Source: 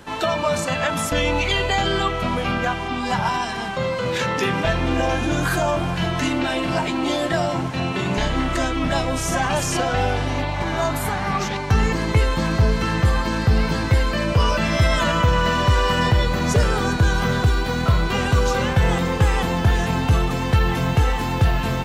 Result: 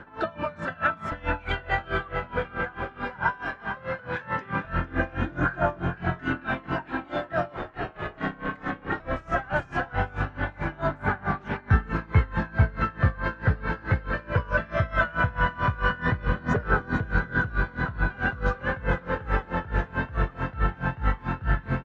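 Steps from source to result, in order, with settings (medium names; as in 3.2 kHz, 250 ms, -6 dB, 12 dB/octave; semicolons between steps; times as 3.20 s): low-pass 2 kHz 12 dB/octave; peaking EQ 1.5 kHz +11.5 dB 0.47 oct; phaser 0.18 Hz, delay 2.4 ms, feedback 38%; 7.57–9.00 s: ring modulator 230 Hz; on a send: frequency-shifting echo 452 ms, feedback 55%, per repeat +48 Hz, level -10.5 dB; on the sum: logarithmic tremolo 4.6 Hz, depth 23 dB; trim -4.5 dB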